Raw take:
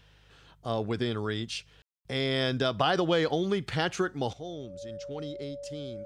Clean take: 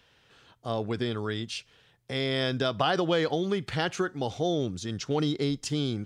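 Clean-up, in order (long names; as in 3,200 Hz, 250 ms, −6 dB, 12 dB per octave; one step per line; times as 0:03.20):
hum removal 51 Hz, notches 3
notch filter 570 Hz, Q 30
ambience match 0:01.82–0:02.05
level 0 dB, from 0:04.33 +12 dB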